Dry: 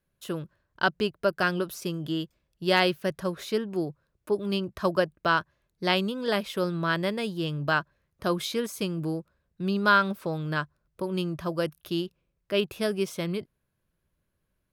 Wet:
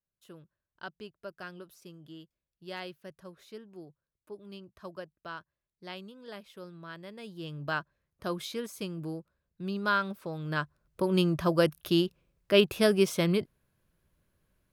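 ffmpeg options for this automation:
ffmpeg -i in.wav -af "volume=4dB,afade=type=in:start_time=7.07:duration=0.67:silence=0.281838,afade=type=in:start_time=10.34:duration=0.85:silence=0.281838" out.wav

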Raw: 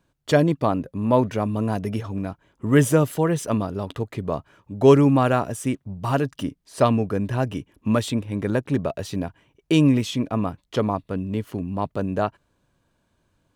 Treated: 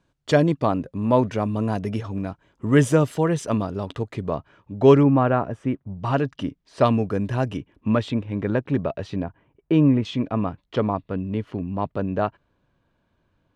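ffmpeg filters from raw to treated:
ffmpeg -i in.wav -af "asetnsamples=nb_out_samples=441:pad=0,asendcmd='4.3 lowpass f 4200;5.03 lowpass f 1800;5.96 lowpass f 4100;6.84 lowpass f 7700;7.57 lowpass f 3200;9.24 lowpass f 1600;10.05 lowpass f 3400',lowpass=7500" out.wav

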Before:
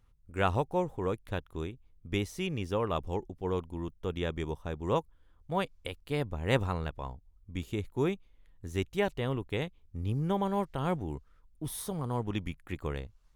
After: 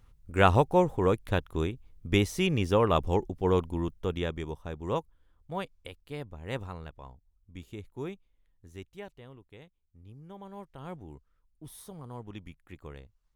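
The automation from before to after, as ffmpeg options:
ffmpeg -i in.wav -af "volume=15.5dB,afade=type=out:start_time=3.67:duration=0.75:silence=0.375837,afade=type=out:start_time=4.94:duration=1.37:silence=0.473151,afade=type=out:start_time=8.12:duration=1.2:silence=0.316228,afade=type=in:start_time=10.26:duration=0.78:silence=0.375837" out.wav

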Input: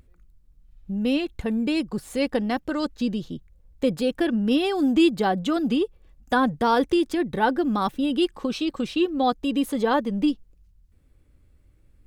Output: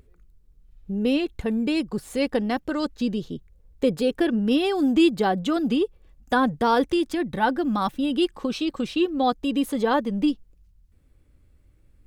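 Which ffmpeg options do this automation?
ffmpeg -i in.wav -af "asetnsamples=nb_out_samples=441:pad=0,asendcmd='1.26 equalizer g 3;3.17 equalizer g 9;4.39 equalizer g 2;6.91 equalizer g -10;8.14 equalizer g 0',equalizer=frequency=420:width_type=o:width=0.24:gain=12" out.wav

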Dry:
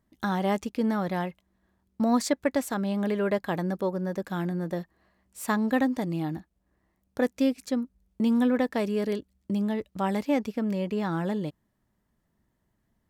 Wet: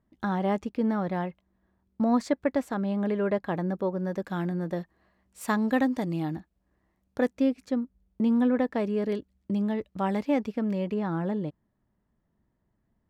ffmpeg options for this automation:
ffmpeg -i in.wav -af "asetnsamples=nb_out_samples=441:pad=0,asendcmd='3.98 lowpass f 4300;5.41 lowpass f 7800;6.35 lowpass f 4300;7.32 lowpass f 1700;9.09 lowpass f 3000;10.94 lowpass f 1300',lowpass=frequency=1700:poles=1" out.wav

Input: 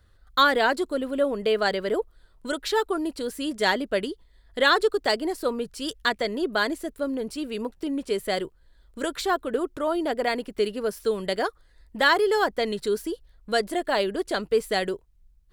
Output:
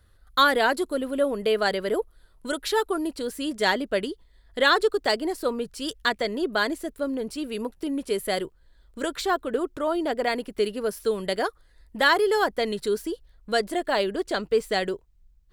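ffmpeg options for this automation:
ffmpeg -i in.wav -af "asetnsamples=nb_out_samples=441:pad=0,asendcmd='3.07 equalizer g 1;7.44 equalizer g 9;8.45 equalizer g -2;10.32 equalizer g 4.5;12.94 equalizer g -1.5;14.16 equalizer g -7.5',equalizer=frequency=11000:width_type=o:width=0.31:gain=11" out.wav

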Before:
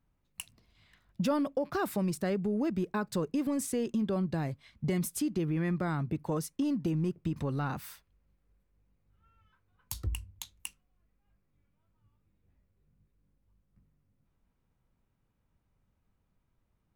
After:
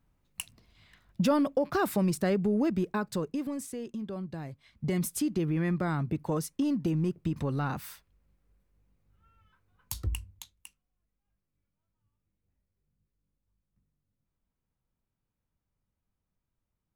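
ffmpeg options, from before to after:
ffmpeg -i in.wav -af "volume=12.5dB,afade=type=out:start_time=2.56:duration=1.15:silence=0.298538,afade=type=in:start_time=4.51:duration=0.52:silence=0.375837,afade=type=out:start_time=10.15:duration=0.41:silence=0.281838" out.wav

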